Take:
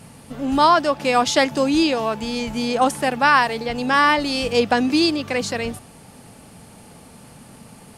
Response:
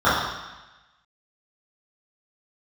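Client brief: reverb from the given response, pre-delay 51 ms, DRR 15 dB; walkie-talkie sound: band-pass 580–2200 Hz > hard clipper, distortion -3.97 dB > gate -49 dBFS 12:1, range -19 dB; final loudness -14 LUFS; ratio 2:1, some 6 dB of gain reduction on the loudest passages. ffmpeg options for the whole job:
-filter_complex "[0:a]acompressor=threshold=0.0891:ratio=2,asplit=2[s0][s1];[1:a]atrim=start_sample=2205,adelay=51[s2];[s1][s2]afir=irnorm=-1:irlink=0,volume=0.0112[s3];[s0][s3]amix=inputs=2:normalize=0,highpass=580,lowpass=2200,asoftclip=type=hard:threshold=0.0355,agate=range=0.112:threshold=0.00355:ratio=12,volume=8.41"

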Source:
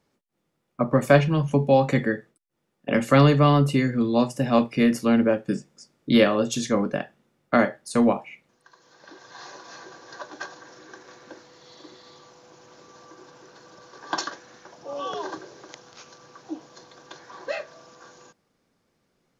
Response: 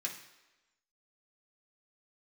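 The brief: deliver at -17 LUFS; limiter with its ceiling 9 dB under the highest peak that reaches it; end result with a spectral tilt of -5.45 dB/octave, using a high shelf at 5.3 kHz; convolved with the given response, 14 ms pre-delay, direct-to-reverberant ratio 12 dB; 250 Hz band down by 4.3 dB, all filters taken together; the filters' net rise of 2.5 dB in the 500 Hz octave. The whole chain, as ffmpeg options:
-filter_complex "[0:a]equalizer=f=250:t=o:g=-6,equalizer=f=500:t=o:g=4,highshelf=f=5300:g=5.5,alimiter=limit=0.316:level=0:latency=1,asplit=2[s0][s1];[1:a]atrim=start_sample=2205,adelay=14[s2];[s1][s2]afir=irnorm=-1:irlink=0,volume=0.224[s3];[s0][s3]amix=inputs=2:normalize=0,volume=2.24"

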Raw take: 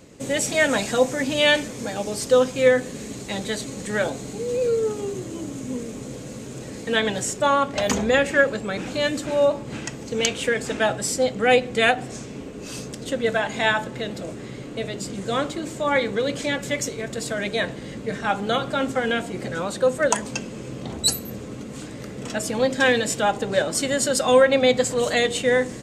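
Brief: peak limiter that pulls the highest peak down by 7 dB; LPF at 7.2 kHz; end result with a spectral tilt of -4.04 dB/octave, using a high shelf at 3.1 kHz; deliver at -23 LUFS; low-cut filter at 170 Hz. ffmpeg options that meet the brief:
-af "highpass=170,lowpass=7200,highshelf=f=3100:g=-7,volume=1.33,alimiter=limit=0.316:level=0:latency=1"

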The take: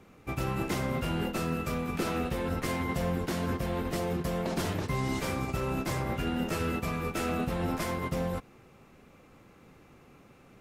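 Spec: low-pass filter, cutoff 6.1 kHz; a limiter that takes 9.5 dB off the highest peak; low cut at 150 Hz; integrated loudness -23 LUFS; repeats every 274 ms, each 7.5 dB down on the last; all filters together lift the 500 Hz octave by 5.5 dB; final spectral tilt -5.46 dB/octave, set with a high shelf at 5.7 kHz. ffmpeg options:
-af "highpass=150,lowpass=6100,equalizer=f=500:t=o:g=6.5,highshelf=f=5700:g=-5,alimiter=level_in=1.12:limit=0.0631:level=0:latency=1,volume=0.891,aecho=1:1:274|548|822|1096|1370:0.422|0.177|0.0744|0.0312|0.0131,volume=3.16"

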